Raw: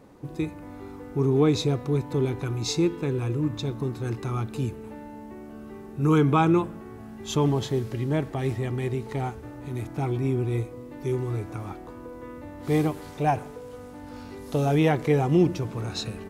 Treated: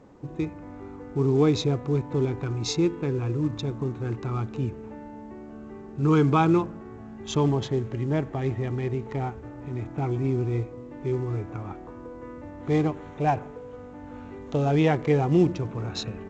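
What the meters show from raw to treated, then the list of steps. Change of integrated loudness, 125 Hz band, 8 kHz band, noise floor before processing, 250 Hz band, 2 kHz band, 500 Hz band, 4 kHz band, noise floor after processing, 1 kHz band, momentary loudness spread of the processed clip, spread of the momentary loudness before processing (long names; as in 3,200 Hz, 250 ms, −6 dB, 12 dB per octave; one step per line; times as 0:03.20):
0.0 dB, 0.0 dB, −2.0 dB, −42 dBFS, 0.0 dB, −1.0 dB, 0.0 dB, −1.0 dB, −42 dBFS, 0.0 dB, 20 LU, 20 LU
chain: adaptive Wiener filter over 9 samples
A-law companding 128 kbit/s 16,000 Hz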